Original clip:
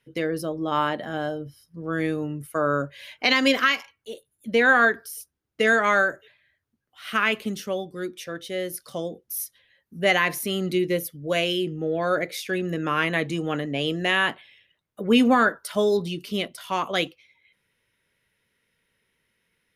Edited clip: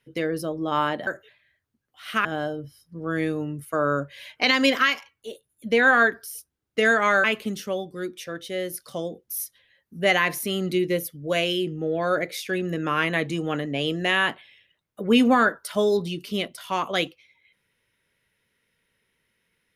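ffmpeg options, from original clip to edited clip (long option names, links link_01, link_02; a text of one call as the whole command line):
ffmpeg -i in.wav -filter_complex "[0:a]asplit=4[link_01][link_02][link_03][link_04];[link_01]atrim=end=1.072[link_05];[link_02]atrim=start=6.058:end=7.242[link_06];[link_03]atrim=start=1.068:end=6.062[link_07];[link_04]atrim=start=7.238[link_08];[link_05][link_06]acrossfade=duration=0.004:curve1=hsin:curve2=hsin[link_09];[link_09][link_07]acrossfade=duration=0.004:curve1=hsin:curve2=hsin[link_10];[link_10][link_08]acrossfade=duration=0.004:curve1=hsin:curve2=hsin" out.wav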